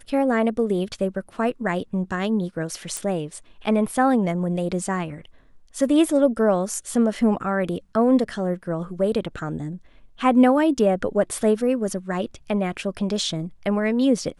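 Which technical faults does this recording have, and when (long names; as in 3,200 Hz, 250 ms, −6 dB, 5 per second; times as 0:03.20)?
0:02.97: click −13 dBFS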